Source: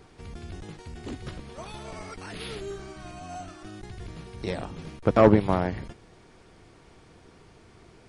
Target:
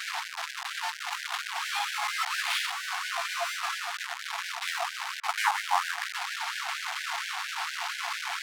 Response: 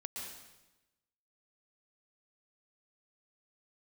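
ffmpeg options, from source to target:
-filter_complex "[0:a]aeval=exprs='val(0)+0.5*0.0668*sgn(val(0))':c=same,adynamicsmooth=sensitivity=6:basefreq=1.2k,asplit=2[a][b];[1:a]atrim=start_sample=2205,lowpass=1.8k[c];[b][c]afir=irnorm=-1:irlink=0,volume=-18.5dB[d];[a][d]amix=inputs=2:normalize=0,asetrate=42336,aresample=44100,afftfilt=real='re*gte(b*sr/1024,670*pow(1500/670,0.5+0.5*sin(2*PI*4.3*pts/sr)))':imag='im*gte(b*sr/1024,670*pow(1500/670,0.5+0.5*sin(2*PI*4.3*pts/sr)))':win_size=1024:overlap=0.75,volume=3dB"

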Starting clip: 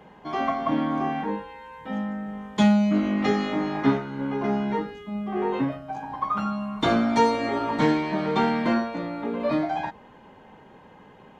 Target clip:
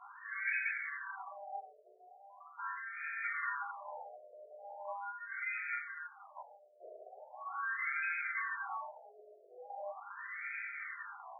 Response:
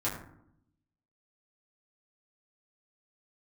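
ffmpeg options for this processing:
-filter_complex "[0:a]areverse,acompressor=threshold=-39dB:ratio=5,areverse,asplit=3[a][b][c];[b]asetrate=66075,aresample=44100,atempo=0.66742,volume=-4dB[d];[c]asetrate=88200,aresample=44100,atempo=0.5,volume=-3dB[e];[a][d][e]amix=inputs=3:normalize=0,lowpass=f=3.3k:t=q:w=0.5098,lowpass=f=3.3k:t=q:w=0.6013,lowpass=f=3.3k:t=q:w=0.9,lowpass=f=3.3k:t=q:w=2.563,afreqshift=-3900[f];[1:a]atrim=start_sample=2205[g];[f][g]afir=irnorm=-1:irlink=0,afftfilt=real='re*between(b*sr/1024,500*pow(1800/500,0.5+0.5*sin(2*PI*0.4*pts/sr))/1.41,500*pow(1800/500,0.5+0.5*sin(2*PI*0.4*pts/sr))*1.41)':imag='im*between(b*sr/1024,500*pow(1800/500,0.5+0.5*sin(2*PI*0.4*pts/sr))/1.41,500*pow(1800/500,0.5+0.5*sin(2*PI*0.4*pts/sr))*1.41)':win_size=1024:overlap=0.75,volume=8dB"

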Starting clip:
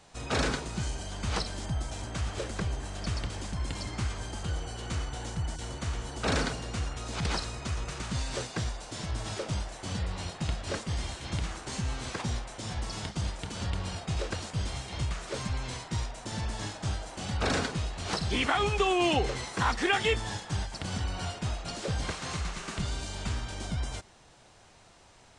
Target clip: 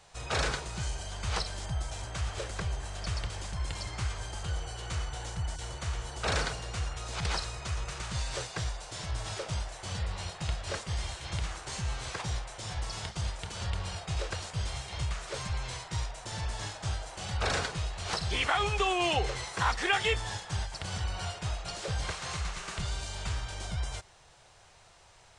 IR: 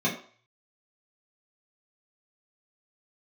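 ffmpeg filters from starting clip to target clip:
-af "equalizer=f=250:w=1.6:g=-14"

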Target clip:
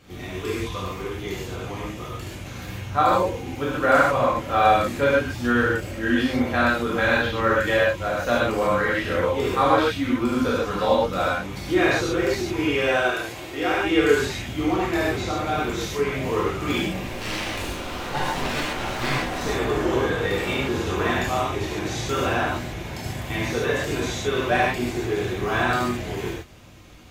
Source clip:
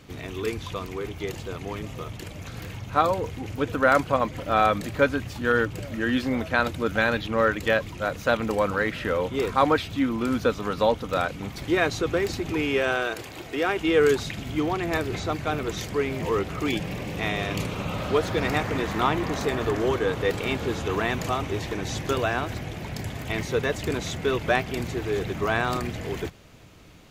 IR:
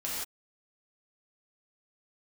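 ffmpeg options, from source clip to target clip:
-filter_complex "[0:a]asettb=1/sr,asplit=3[a][b][c];[a]atrim=end=17.054[d];[b]atrim=start=17.05:end=19.38,asetpts=PTS-STARTPTS,afade=t=in:d=0.004:c=qsin,afade=t=out:st=2.326:d=0.004:c=qsin,aeval=exprs='abs(val(0))':c=same[e];[c]atrim=start=19.376[f];[d][e]acrossfade=d=0.004:c1=hsin:c2=qsin[g];[g][f]acrossfade=d=0.004:c1=qsin:c2=hsin[h];[1:a]atrim=start_sample=2205,asetrate=52920,aresample=44100[i];[h][i]afir=irnorm=-1:irlink=0"

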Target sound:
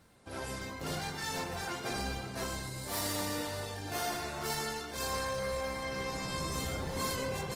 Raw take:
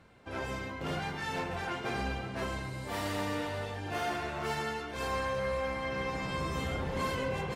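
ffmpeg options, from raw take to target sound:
-af "aexciter=amount=3.5:drive=6:freq=4k,volume=-2.5dB" -ar 48000 -c:a libopus -b:a 24k

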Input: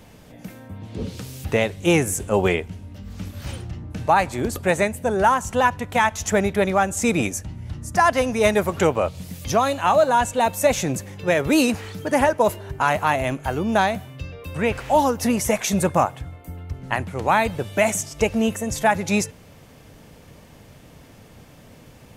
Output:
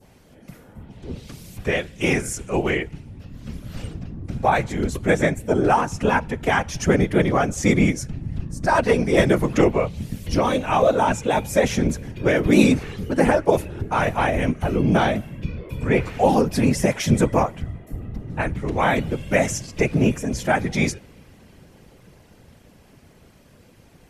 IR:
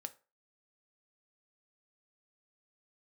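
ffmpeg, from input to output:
-filter_complex "[0:a]adynamicequalizer=threshold=0.0158:dfrequency=2600:dqfactor=0.76:tfrequency=2600:tqfactor=0.76:attack=5:release=100:ratio=0.375:range=3:mode=boostabove:tftype=bell,acrossover=split=520|1600[a][b][c];[a]dynaudnorm=f=330:g=21:m=13.5dB[d];[d][b][c]amix=inputs=3:normalize=0,afftfilt=real='hypot(re,im)*cos(2*PI*random(0))':imag='hypot(re,im)*sin(2*PI*random(1))':win_size=512:overlap=0.75,asetrate=40572,aresample=44100,volume=1dB"

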